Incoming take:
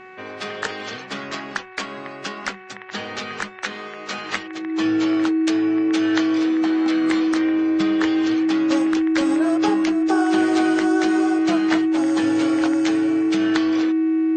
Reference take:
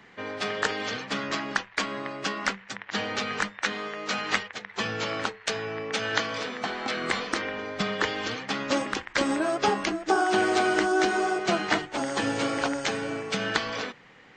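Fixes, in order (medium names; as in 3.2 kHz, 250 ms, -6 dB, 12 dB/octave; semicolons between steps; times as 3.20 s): de-hum 373.5 Hz, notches 7; band-stop 320 Hz, Q 30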